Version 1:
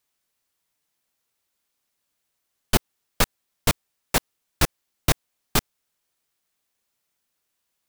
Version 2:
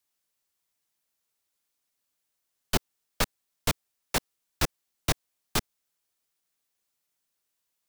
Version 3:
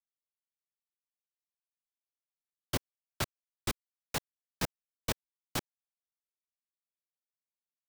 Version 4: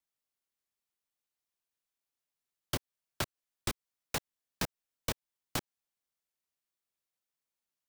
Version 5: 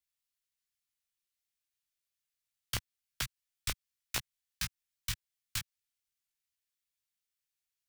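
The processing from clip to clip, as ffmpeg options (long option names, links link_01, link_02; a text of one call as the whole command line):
ffmpeg -i in.wav -filter_complex "[0:a]bass=frequency=250:gain=-1,treble=frequency=4000:gain=3,acrossover=split=290|660|6100[link_01][link_02][link_03][link_04];[link_04]alimiter=limit=-17dB:level=0:latency=1[link_05];[link_01][link_02][link_03][link_05]amix=inputs=4:normalize=0,volume=-5.5dB" out.wav
ffmpeg -i in.wav -af "acrusher=bits=7:dc=4:mix=0:aa=0.000001,aeval=exprs='val(0)*sgn(sin(2*PI*120*n/s))':channel_layout=same,volume=-7.5dB" out.wav
ffmpeg -i in.wav -af "acompressor=threshold=-35dB:ratio=6,volume=4.5dB" out.wav
ffmpeg -i in.wav -filter_complex "[0:a]flanger=delay=15.5:depth=2.9:speed=0.28,acrossover=split=140|1400[link_01][link_02][link_03];[link_02]acrusher=bits=4:mix=0:aa=0.000001[link_04];[link_01][link_04][link_03]amix=inputs=3:normalize=0,volume=4.5dB" out.wav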